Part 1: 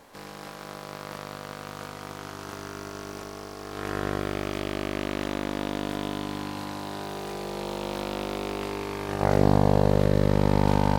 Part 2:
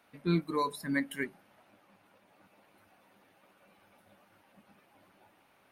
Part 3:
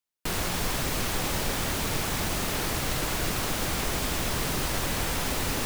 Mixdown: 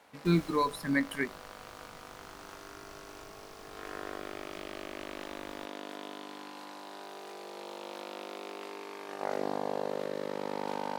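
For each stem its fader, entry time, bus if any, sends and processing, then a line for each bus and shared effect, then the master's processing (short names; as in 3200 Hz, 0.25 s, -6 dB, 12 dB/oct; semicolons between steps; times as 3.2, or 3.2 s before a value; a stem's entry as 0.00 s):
-8.5 dB, 0.00 s, no send, Bessel high-pass 380 Hz, order 4
+2.5 dB, 0.00 s, no send, dry
-14.5 dB, 0.00 s, no send, auto duck -12 dB, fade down 1.00 s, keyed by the second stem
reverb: off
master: high shelf 8700 Hz -4 dB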